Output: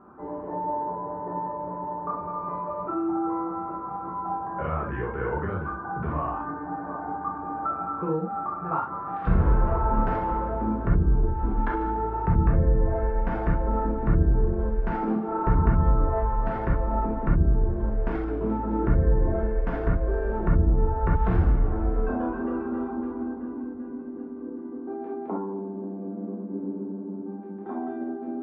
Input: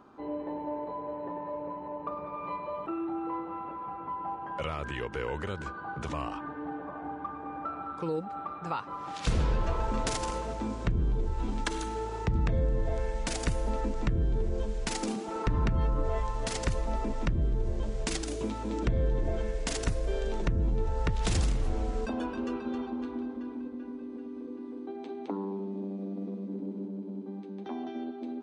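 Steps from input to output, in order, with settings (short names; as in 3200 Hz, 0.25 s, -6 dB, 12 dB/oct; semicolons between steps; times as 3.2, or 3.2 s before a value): Chebyshev low-pass 1500 Hz, order 3; non-linear reverb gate 90 ms flat, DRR -3.5 dB; gain +1.5 dB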